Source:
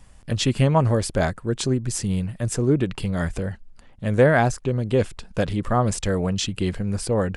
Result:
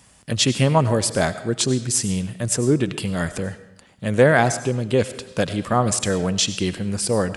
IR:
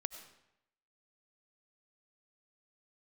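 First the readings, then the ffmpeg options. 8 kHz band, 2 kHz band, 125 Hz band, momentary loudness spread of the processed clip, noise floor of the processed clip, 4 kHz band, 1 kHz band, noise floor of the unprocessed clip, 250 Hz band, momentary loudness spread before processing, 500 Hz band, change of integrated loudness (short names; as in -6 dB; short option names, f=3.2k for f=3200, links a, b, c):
+8.0 dB, +3.5 dB, -0.5 dB, 9 LU, -53 dBFS, +6.5 dB, +2.0 dB, -49 dBFS, +1.5 dB, 9 LU, +2.0 dB, +2.0 dB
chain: -filter_complex "[0:a]highpass=110,asplit=2[a][b];[1:a]atrim=start_sample=2205,highshelf=f=2.4k:g=11[c];[b][c]afir=irnorm=-1:irlink=0,volume=2.5dB[d];[a][d]amix=inputs=2:normalize=0,volume=-5dB"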